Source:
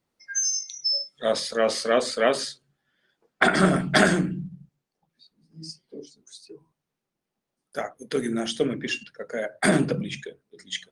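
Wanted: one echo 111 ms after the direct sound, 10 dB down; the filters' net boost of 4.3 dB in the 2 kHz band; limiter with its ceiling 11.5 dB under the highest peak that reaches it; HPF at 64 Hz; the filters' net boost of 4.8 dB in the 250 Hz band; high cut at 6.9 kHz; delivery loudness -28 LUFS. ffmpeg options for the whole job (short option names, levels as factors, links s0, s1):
-af "highpass=64,lowpass=6900,equalizer=f=250:t=o:g=6.5,equalizer=f=2000:t=o:g=5.5,alimiter=limit=0.237:level=0:latency=1,aecho=1:1:111:0.316,volume=0.708"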